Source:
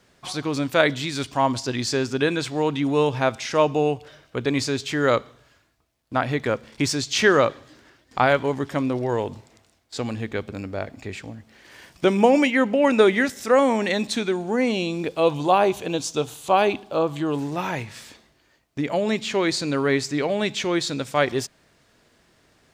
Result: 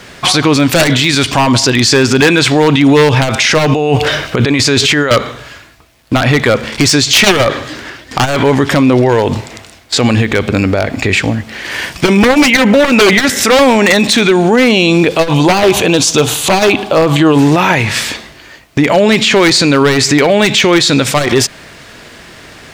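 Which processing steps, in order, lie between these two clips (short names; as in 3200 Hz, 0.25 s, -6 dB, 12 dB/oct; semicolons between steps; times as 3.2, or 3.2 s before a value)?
bell 2300 Hz +5 dB 1.7 oct; 3.71–5.11 negative-ratio compressor -31 dBFS, ratio -1; wavefolder -14.5 dBFS; maximiser +23.5 dB; core saturation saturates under 90 Hz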